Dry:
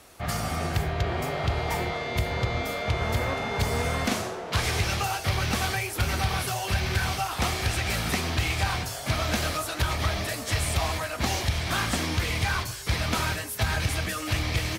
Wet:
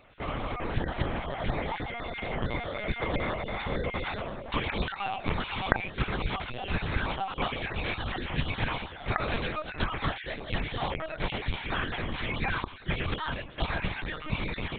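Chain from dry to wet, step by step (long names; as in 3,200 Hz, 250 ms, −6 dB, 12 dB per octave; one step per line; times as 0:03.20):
time-frequency cells dropped at random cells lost 24%
linear-prediction vocoder at 8 kHz pitch kept
level −3 dB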